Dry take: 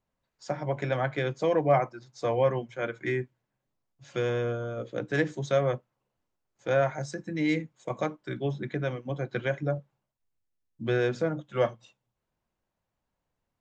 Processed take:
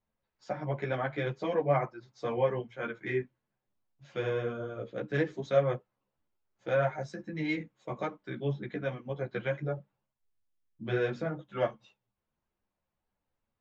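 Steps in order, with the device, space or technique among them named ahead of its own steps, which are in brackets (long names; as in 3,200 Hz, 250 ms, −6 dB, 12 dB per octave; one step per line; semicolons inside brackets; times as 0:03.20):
string-machine ensemble chorus (string-ensemble chorus; low-pass filter 4,100 Hz 12 dB per octave)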